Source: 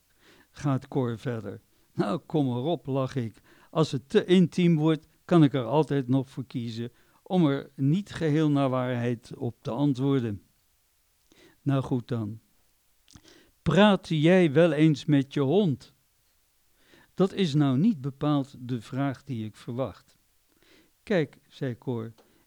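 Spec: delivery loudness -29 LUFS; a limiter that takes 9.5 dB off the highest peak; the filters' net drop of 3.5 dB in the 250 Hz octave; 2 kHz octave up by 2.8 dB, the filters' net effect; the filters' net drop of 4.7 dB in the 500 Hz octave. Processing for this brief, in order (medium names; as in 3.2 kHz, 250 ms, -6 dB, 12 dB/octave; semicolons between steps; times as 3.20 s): peaking EQ 250 Hz -3.5 dB; peaking EQ 500 Hz -5 dB; peaking EQ 2 kHz +4 dB; trim +2 dB; peak limiter -17 dBFS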